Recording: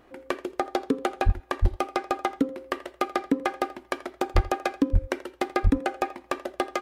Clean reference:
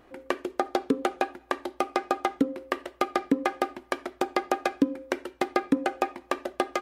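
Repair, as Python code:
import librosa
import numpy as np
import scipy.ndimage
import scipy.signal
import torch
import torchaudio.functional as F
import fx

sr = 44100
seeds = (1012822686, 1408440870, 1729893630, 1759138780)

y = fx.fix_declip(x, sr, threshold_db=-12.0)
y = fx.fix_deplosive(y, sr, at_s=(1.25, 1.61, 4.34, 4.92, 5.63))
y = fx.fix_echo_inverse(y, sr, delay_ms=83, level_db=-19.5)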